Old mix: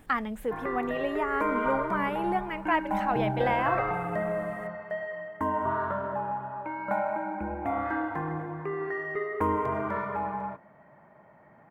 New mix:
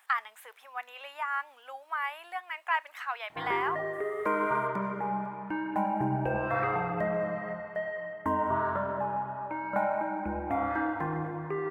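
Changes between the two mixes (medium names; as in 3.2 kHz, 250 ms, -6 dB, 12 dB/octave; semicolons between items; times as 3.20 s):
speech: add high-pass 920 Hz 24 dB/octave; background: entry +2.85 s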